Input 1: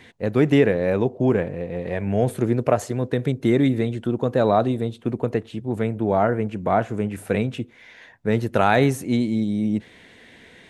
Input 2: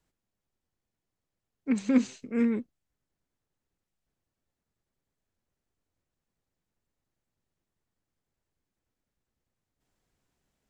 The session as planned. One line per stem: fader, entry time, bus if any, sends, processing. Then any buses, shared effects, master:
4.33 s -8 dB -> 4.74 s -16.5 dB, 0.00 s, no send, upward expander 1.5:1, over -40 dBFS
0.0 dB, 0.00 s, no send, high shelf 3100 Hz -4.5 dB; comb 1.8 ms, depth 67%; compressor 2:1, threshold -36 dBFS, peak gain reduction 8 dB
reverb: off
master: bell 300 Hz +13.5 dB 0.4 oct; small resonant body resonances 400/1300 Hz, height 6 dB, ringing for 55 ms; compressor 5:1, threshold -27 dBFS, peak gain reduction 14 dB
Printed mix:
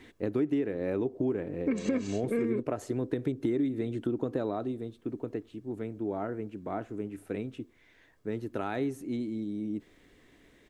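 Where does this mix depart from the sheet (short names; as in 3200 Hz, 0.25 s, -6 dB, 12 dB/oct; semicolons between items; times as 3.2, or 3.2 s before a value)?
stem 1: missing upward expander 1.5:1, over -40 dBFS; stem 2 0.0 dB -> +11.5 dB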